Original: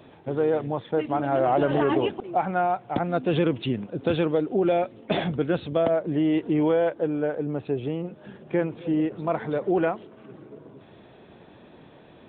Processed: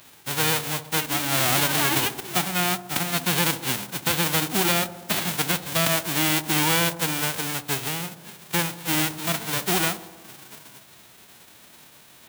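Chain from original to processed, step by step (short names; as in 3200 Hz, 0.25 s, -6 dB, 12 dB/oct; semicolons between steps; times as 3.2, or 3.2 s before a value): spectral whitening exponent 0.1; dark delay 65 ms, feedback 71%, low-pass 930 Hz, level -13 dB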